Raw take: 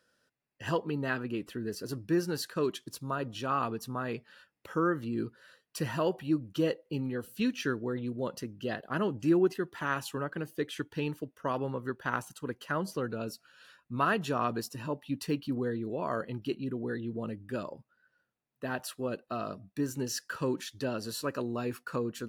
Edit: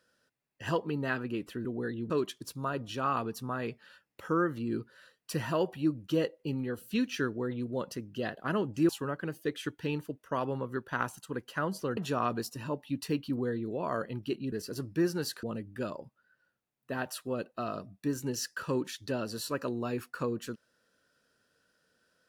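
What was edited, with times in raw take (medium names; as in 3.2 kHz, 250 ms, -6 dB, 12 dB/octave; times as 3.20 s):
1.65–2.56 s: swap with 16.71–17.16 s
9.35–10.02 s: delete
13.10–14.16 s: delete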